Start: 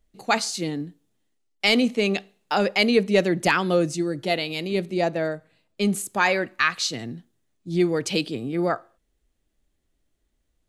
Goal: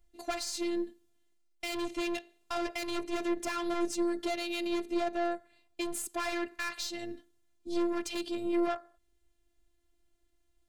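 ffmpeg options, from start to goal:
-af "aeval=exprs='(tanh(15.8*val(0)+0.35)-tanh(0.35))/15.8':c=same,afftfilt=real='hypot(re,im)*cos(PI*b)':imag='0':win_size=512:overlap=0.75,alimiter=limit=-22.5dB:level=0:latency=1:release=329,volume=3dB"

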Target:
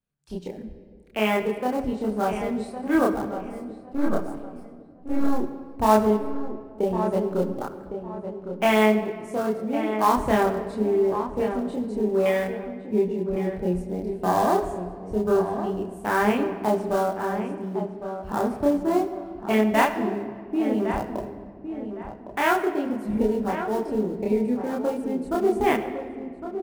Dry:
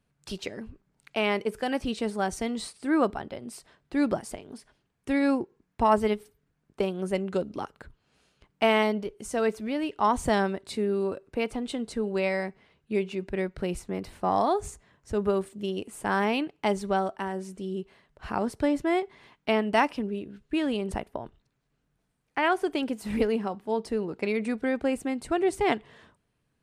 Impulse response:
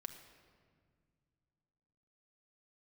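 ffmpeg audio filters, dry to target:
-filter_complex "[0:a]asettb=1/sr,asplit=3[a][b][c];[a]atrim=end=3.354[d];[b]atrim=start=3.35:end=5.37,asetpts=PTS-STARTPTS,afade=t=in:d=0.004:c=qsin,afade=t=out:st=2.016:d=0.004:c=qsin,aeval=exprs='if(lt(val(0),0),0.251*val(0),val(0))':c=same[e];[c]atrim=start=5.366[f];[d][e]acrossfade=d=0.004:c1=hsin:c2=qsin[g];[g][f]acrossfade=d=0.004:c1=qsin:c2=hsin,afwtdn=0.0251,highshelf=f=9.4k:g=6.5,acrossover=split=630|3200[h][i][j];[i]acrusher=bits=3:mode=log:mix=0:aa=0.000001[k];[h][k][j]amix=inputs=3:normalize=0,asplit=2[l][m];[m]adelay=1109,lowpass=f=1.9k:p=1,volume=-9dB,asplit=2[n][o];[o]adelay=1109,lowpass=f=1.9k:p=1,volume=0.29,asplit=2[p][q];[q]adelay=1109,lowpass=f=1.9k:p=1,volume=0.29[r];[l][n][p][r]amix=inputs=4:normalize=0,asplit=2[s][t];[1:a]atrim=start_sample=2205,adelay=28[u];[t][u]afir=irnorm=-1:irlink=0,volume=5dB[v];[s][v]amix=inputs=2:normalize=0"

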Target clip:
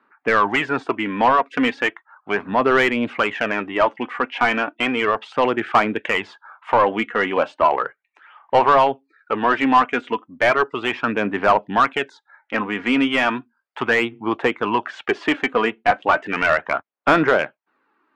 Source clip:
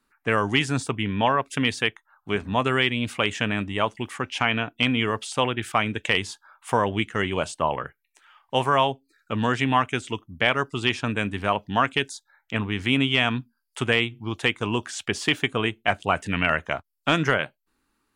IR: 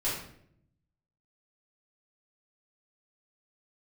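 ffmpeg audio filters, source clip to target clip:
-filter_complex "[0:a]highpass=210,lowpass=2.1k,aphaser=in_gain=1:out_gain=1:delay=4.2:decay=0.41:speed=0.35:type=sinusoidal,asplit=2[a][b];[b]highpass=f=720:p=1,volume=19dB,asoftclip=type=tanh:threshold=-3dB[c];[a][c]amix=inputs=2:normalize=0,lowpass=f=1.5k:p=1,volume=-6dB"

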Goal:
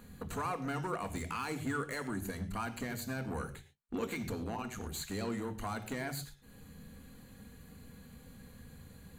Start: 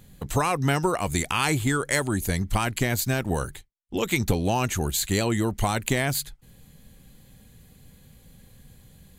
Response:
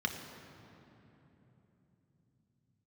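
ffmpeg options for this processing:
-filter_complex "[0:a]acompressor=threshold=-43dB:ratio=2,asettb=1/sr,asplit=3[a][b][c];[a]atrim=end=4.444[d];[b]atrim=start=4.44:end=4.89,asetpts=PTS-STARTPTS,afade=t=in:d=0.004:c=qsin,afade=t=out:st=0.446:d=0.004:c=qsin,tremolo=f=110:d=0.857[e];[c]atrim=start=4.886[f];[d][e]acrossfade=d=0.004:c1=hsin:c2=qsin[g];[g][f]acrossfade=d=0.004:c1=qsin:c2=hsin,volume=32dB,asoftclip=hard,volume=-32dB,asplit=2[h][i];[1:a]atrim=start_sample=2205,atrim=end_sample=6174[j];[i][j]afir=irnorm=-1:irlink=0,volume=-4.5dB[k];[h][k]amix=inputs=2:normalize=0,volume=-1.5dB"

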